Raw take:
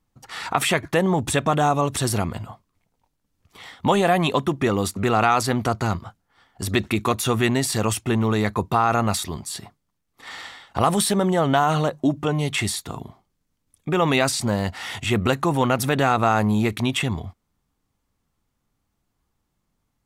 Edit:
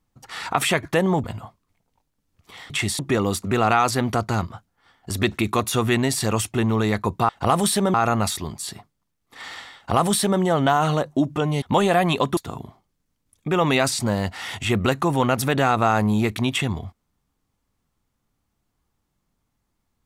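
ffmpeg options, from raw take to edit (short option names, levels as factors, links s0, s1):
-filter_complex "[0:a]asplit=8[s0][s1][s2][s3][s4][s5][s6][s7];[s0]atrim=end=1.242[s8];[s1]atrim=start=2.298:end=3.762[s9];[s2]atrim=start=12.488:end=12.782[s10];[s3]atrim=start=4.508:end=8.812[s11];[s4]atrim=start=10.628:end=11.282[s12];[s5]atrim=start=8.808:end=12.492[s13];[s6]atrim=start=3.758:end=4.512[s14];[s7]atrim=start=12.778[s15];[s8][s9]acrossfade=d=0.004:c1=hsin:c2=hsin[s16];[s16][s10]acrossfade=d=0.004:c1=hsin:c2=hsin[s17];[s17][s11]acrossfade=d=0.004:c1=hsin:c2=hsin[s18];[s18][s12]acrossfade=d=0.004:c1=hsin:c2=hsin[s19];[s19][s13]acrossfade=d=0.004:c1=hsin:c2=hsin[s20];[s20][s14]acrossfade=d=0.004:c1=hsin:c2=hsin[s21];[s21][s15]acrossfade=d=0.004:c1=hsin:c2=hsin"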